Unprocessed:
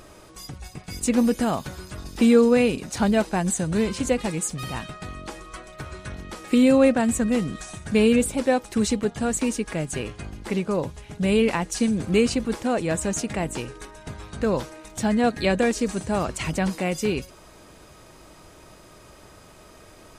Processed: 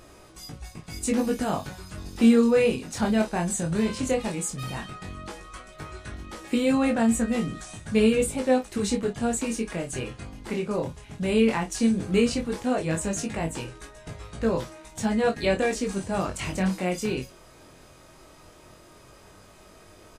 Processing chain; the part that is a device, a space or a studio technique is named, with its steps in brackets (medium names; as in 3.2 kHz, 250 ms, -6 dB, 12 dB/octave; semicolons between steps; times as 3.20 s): double-tracked vocal (doubling 31 ms -10 dB; chorus 0.14 Hz, delay 17.5 ms, depth 5.9 ms)